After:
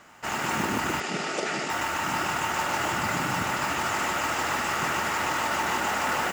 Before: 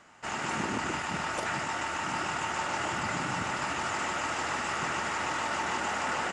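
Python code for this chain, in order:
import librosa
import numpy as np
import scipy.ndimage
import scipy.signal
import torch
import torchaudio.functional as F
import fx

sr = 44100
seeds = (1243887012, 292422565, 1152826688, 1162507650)

y = fx.mod_noise(x, sr, seeds[0], snr_db=17)
y = fx.cabinet(y, sr, low_hz=160.0, low_slope=24, high_hz=8100.0, hz=(410.0, 990.0, 1600.0, 4800.0), db=(8, -10, -4, 3), at=(1.0, 1.7))
y = y * librosa.db_to_amplitude(4.5)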